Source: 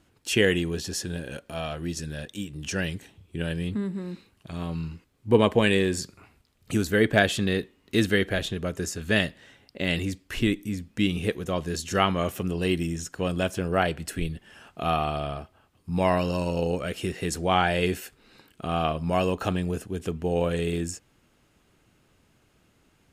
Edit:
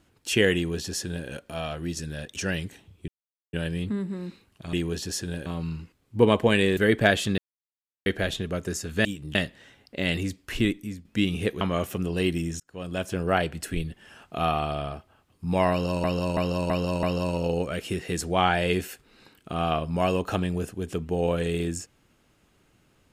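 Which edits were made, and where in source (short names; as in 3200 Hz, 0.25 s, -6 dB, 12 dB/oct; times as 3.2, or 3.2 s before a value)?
0.55–1.28 copy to 4.58
2.36–2.66 move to 9.17
3.38 insert silence 0.45 s
5.89–6.89 cut
7.5–8.18 mute
10.49–10.87 fade out, to -9 dB
11.43–12.06 cut
13.05–13.63 fade in
16.16–16.49 loop, 5 plays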